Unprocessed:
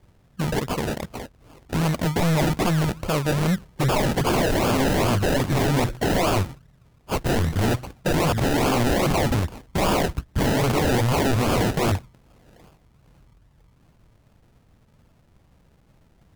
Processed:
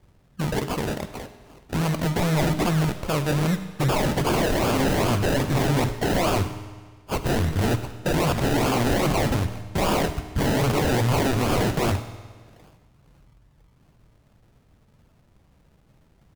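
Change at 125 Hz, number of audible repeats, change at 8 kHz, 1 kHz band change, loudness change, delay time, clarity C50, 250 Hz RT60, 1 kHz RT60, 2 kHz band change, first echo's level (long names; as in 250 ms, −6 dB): −0.5 dB, 1, −1.0 dB, −1.0 dB, −1.0 dB, 102 ms, 11.5 dB, 1.5 s, 1.5 s, −1.0 dB, −20.0 dB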